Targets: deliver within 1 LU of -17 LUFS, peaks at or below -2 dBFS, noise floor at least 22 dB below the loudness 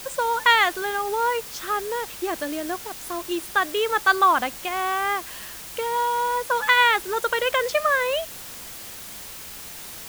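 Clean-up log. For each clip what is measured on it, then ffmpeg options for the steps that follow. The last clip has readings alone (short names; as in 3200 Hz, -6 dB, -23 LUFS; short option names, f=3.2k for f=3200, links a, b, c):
noise floor -39 dBFS; noise floor target -45 dBFS; loudness -22.5 LUFS; peak -4.5 dBFS; loudness target -17.0 LUFS
-> -af "afftdn=nr=6:nf=-39"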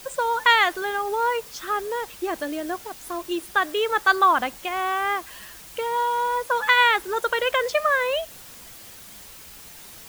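noise floor -44 dBFS; noise floor target -45 dBFS
-> -af "afftdn=nr=6:nf=-44"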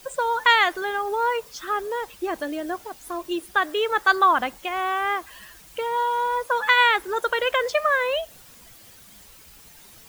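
noise floor -49 dBFS; loudness -22.5 LUFS; peak -4.5 dBFS; loudness target -17.0 LUFS
-> -af "volume=5.5dB,alimiter=limit=-2dB:level=0:latency=1"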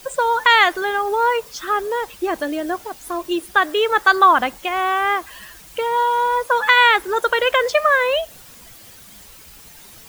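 loudness -17.5 LUFS; peak -2.0 dBFS; noise floor -43 dBFS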